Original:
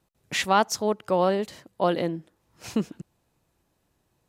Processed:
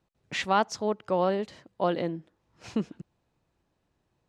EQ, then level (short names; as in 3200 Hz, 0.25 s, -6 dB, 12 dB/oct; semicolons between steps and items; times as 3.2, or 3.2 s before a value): air absorption 86 m; -3.0 dB